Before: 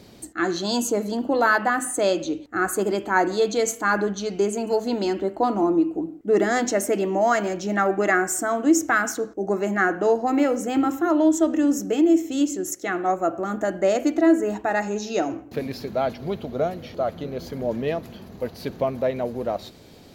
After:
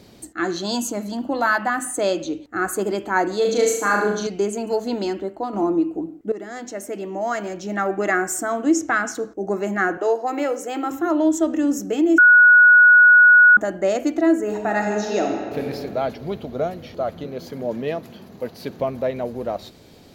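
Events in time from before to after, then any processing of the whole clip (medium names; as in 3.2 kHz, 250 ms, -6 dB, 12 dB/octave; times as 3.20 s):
0.75–1.97 s: peaking EQ 440 Hz -12 dB 0.3 oct
3.41–4.27 s: flutter echo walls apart 6.5 m, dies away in 0.71 s
5.01–5.53 s: fade out, to -7.5 dB
6.32–8.21 s: fade in, from -16 dB
8.73–9.15 s: low-pass 7.5 kHz
9.97–10.91 s: high-pass 330 Hz 24 dB/octave
12.18–13.57 s: bleep 1.46 kHz -7 dBFS
14.42–15.65 s: reverb throw, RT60 2.3 s, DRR 1.5 dB
17.25–18.79 s: high-pass 120 Hz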